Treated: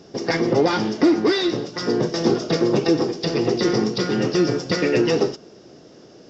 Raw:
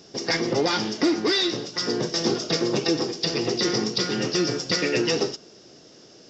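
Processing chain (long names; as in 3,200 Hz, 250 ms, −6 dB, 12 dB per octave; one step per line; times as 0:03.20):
high-shelf EQ 2,200 Hz −12 dB
level +6 dB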